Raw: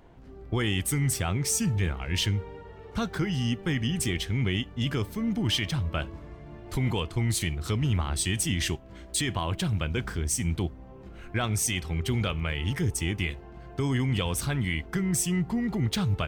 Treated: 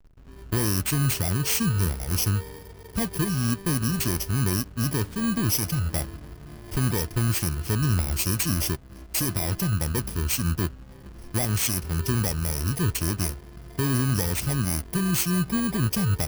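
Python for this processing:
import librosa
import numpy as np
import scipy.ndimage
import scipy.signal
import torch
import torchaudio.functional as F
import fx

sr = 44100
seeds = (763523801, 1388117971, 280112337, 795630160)

y = fx.bit_reversed(x, sr, seeds[0], block=32)
y = fx.backlash(y, sr, play_db=-43.0)
y = F.gain(torch.from_numpy(y), 3.0).numpy()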